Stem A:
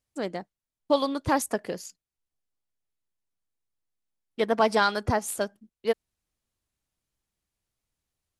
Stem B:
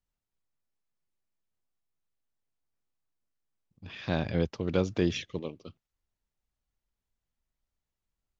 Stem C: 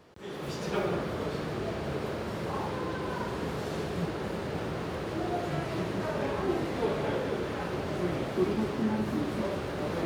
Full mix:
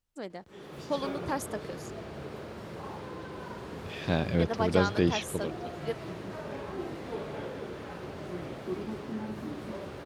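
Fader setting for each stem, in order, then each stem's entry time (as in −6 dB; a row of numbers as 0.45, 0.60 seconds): −8.5, +1.5, −7.5 decibels; 0.00, 0.00, 0.30 seconds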